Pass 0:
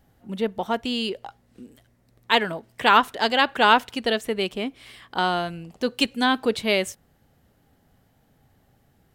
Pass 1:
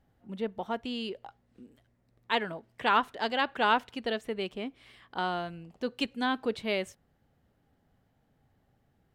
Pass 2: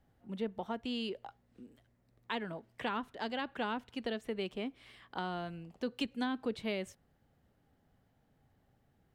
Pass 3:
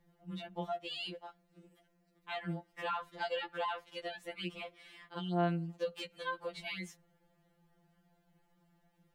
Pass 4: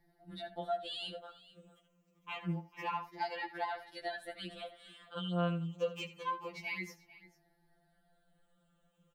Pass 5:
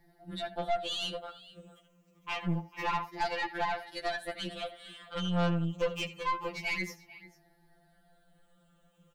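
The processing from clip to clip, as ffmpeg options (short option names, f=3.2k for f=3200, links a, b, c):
-af "highshelf=f=5.5k:g=-11,volume=-8dB"
-filter_complex "[0:a]acrossover=split=310[a][b];[b]acompressor=threshold=-35dB:ratio=4[c];[a][c]amix=inputs=2:normalize=0,volume=-1.5dB"
-af "alimiter=level_in=2.5dB:limit=-24dB:level=0:latency=1:release=216,volume=-2.5dB,afftfilt=real='re*2.83*eq(mod(b,8),0)':imag='im*2.83*eq(mod(b,8),0)':win_size=2048:overlap=0.75,volume=4dB"
-af "afftfilt=real='re*pow(10,14/40*sin(2*PI*(0.77*log(max(b,1)*sr/1024/100)/log(2)-(-0.27)*(pts-256)/sr)))':imag='im*pow(10,14/40*sin(2*PI*(0.77*log(max(b,1)*sr/1024/100)/log(2)-(-0.27)*(pts-256)/sr)))':win_size=1024:overlap=0.75,aecho=1:1:79|443:0.178|0.112,volume=-2.5dB"
-af "aeval=exprs='0.106*(cos(1*acos(clip(val(0)/0.106,-1,1)))-cos(1*PI/2))+0.015*(cos(4*acos(clip(val(0)/0.106,-1,1)))-cos(4*PI/2))+0.0237*(cos(6*acos(clip(val(0)/0.106,-1,1)))-cos(6*PI/2))':c=same,asoftclip=type=tanh:threshold=-28.5dB,volume=7dB"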